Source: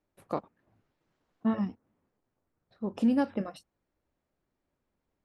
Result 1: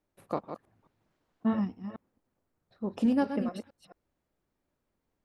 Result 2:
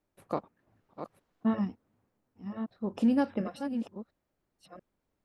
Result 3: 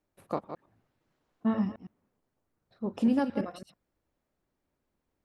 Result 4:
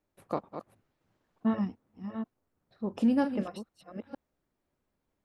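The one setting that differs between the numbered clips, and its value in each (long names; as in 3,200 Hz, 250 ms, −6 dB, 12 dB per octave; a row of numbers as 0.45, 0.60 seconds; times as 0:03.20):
delay that plays each chunk backwards, delay time: 218, 685, 110, 461 milliseconds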